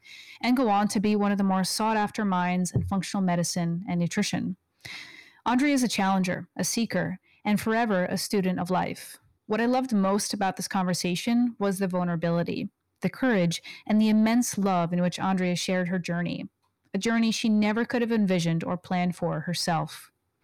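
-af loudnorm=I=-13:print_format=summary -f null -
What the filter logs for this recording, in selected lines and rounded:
Input Integrated:    -26.3 LUFS
Input True Peak:     -16.6 dBTP
Input LRA:             1.7 LU
Input Threshold:     -36.7 LUFS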